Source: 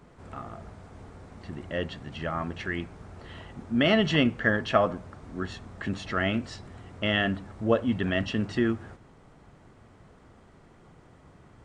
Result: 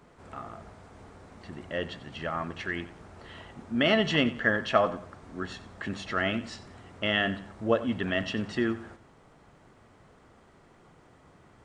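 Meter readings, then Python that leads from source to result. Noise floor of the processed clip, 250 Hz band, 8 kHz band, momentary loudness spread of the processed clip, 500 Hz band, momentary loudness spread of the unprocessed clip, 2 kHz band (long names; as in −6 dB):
−58 dBFS, −3.0 dB, can't be measured, 21 LU, −1.0 dB, 21 LU, 0.0 dB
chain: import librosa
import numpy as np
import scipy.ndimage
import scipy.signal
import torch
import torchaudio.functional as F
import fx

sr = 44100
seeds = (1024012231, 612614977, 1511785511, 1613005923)

p1 = fx.low_shelf(x, sr, hz=230.0, db=-7.0)
y = p1 + fx.echo_feedback(p1, sr, ms=91, feedback_pct=32, wet_db=-16.0, dry=0)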